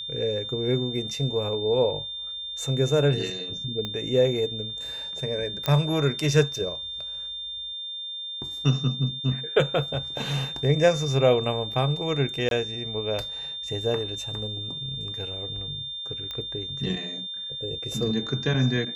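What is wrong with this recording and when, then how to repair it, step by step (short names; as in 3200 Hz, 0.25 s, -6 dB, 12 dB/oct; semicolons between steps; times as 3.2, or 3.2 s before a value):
tone 3600 Hz -32 dBFS
3.85 pop -18 dBFS
5.66 pop -10 dBFS
12.49–12.51 gap 22 ms
16.31 pop -20 dBFS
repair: de-click; notch 3600 Hz, Q 30; interpolate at 12.49, 22 ms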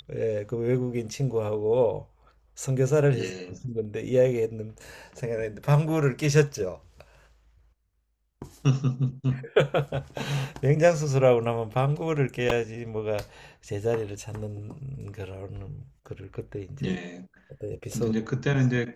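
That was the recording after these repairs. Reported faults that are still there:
3.85 pop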